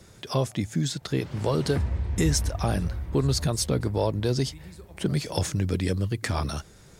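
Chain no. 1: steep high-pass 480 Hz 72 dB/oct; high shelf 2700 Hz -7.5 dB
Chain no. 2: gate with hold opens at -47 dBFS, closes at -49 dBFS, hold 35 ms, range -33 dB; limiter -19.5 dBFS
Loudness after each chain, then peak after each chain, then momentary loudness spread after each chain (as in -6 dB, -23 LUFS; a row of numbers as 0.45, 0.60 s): -36.0, -30.5 LUFS; -16.5, -19.5 dBFS; 10, 5 LU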